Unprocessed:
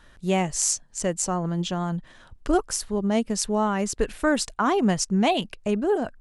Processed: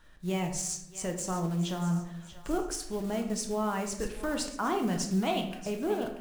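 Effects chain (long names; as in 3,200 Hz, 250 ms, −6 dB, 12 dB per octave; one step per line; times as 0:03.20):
one scale factor per block 5 bits
brickwall limiter −15 dBFS, peak gain reduction 8 dB
on a send: feedback echo with a high-pass in the loop 635 ms, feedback 48%, high-pass 810 Hz, level −13.5 dB
on the sum: rectangular room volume 180 cubic metres, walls mixed, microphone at 0.62 metres
level −7.5 dB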